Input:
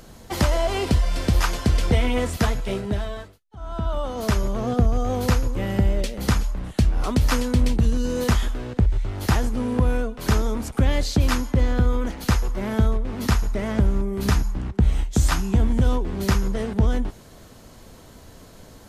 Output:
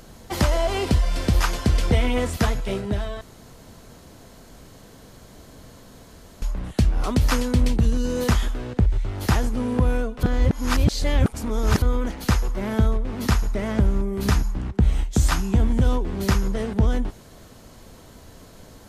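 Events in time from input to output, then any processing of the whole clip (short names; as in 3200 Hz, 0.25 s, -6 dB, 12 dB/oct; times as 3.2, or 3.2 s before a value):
3.21–6.42 room tone
10.23–11.82 reverse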